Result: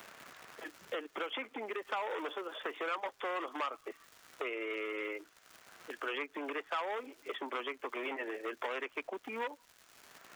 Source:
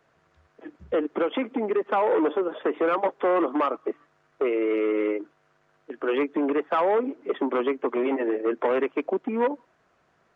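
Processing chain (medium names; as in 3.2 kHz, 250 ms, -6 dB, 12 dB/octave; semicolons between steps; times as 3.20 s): differentiator; crackle 210 per s -58 dBFS; three bands compressed up and down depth 70%; trim +6.5 dB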